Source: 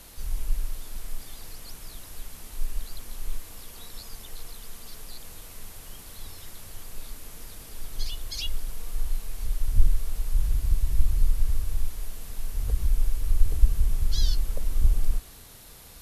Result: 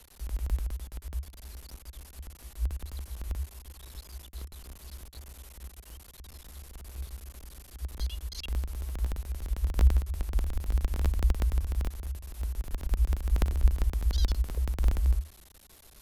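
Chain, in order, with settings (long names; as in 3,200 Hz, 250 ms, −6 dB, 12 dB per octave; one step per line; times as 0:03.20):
sub-harmonics by changed cycles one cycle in 3, muted
frequency shifter −77 Hz
level −5.5 dB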